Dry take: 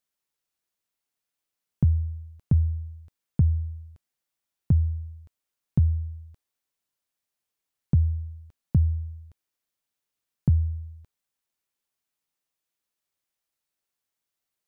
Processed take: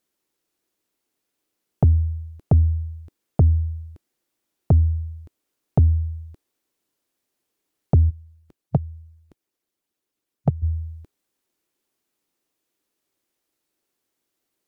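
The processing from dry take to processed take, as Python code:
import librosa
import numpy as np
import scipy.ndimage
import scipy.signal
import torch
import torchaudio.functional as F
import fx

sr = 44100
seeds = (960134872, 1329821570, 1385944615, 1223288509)

y = fx.hpss(x, sr, part='harmonic', gain_db=-18, at=(8.09, 10.62), fade=0.02)
y = fx.peak_eq(y, sr, hz=330.0, db=12.5, octaves=1.2)
y = fx.fold_sine(y, sr, drive_db=5, ceiling_db=-6.5)
y = y * librosa.db_to_amplitude(-3.0)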